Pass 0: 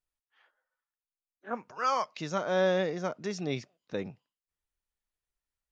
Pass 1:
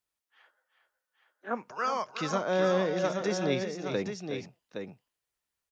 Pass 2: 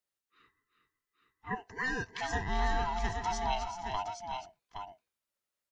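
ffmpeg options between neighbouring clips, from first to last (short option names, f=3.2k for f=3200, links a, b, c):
-filter_complex "[0:a]acrossover=split=400[a][b];[b]acompressor=threshold=-33dB:ratio=5[c];[a][c]amix=inputs=2:normalize=0,highpass=f=170:p=1,aecho=1:1:366|389|818:0.299|0.251|0.447,volume=4.5dB"
-af "afftfilt=real='real(if(lt(b,1008),b+24*(1-2*mod(floor(b/24),2)),b),0)':imag='imag(if(lt(b,1008),b+24*(1-2*mod(floor(b/24),2)),b),0)':win_size=2048:overlap=0.75,volume=-3.5dB"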